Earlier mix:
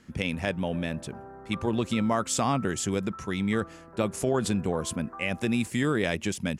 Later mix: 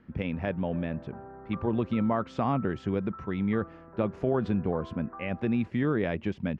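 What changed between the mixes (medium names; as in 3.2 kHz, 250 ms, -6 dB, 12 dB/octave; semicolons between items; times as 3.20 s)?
speech: add low-pass 1.7 kHz 6 dB/octave; master: add distance through air 270 m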